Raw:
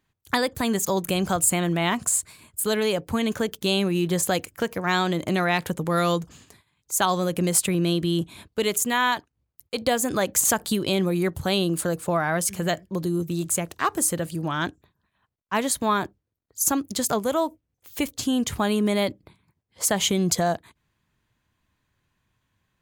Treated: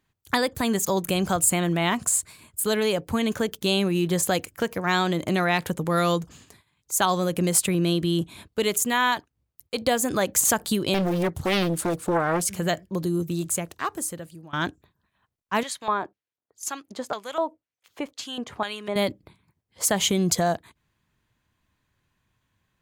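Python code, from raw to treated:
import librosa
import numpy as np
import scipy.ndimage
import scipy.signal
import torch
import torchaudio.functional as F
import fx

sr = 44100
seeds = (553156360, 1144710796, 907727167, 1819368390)

y = fx.doppler_dist(x, sr, depth_ms=0.72, at=(10.94, 12.54))
y = fx.filter_lfo_bandpass(y, sr, shape='square', hz=2.0, low_hz=760.0, high_hz=2600.0, q=0.81, at=(15.63, 18.96))
y = fx.edit(y, sr, fx.fade_out_to(start_s=13.28, length_s=1.25, floor_db=-21.5), tone=tone)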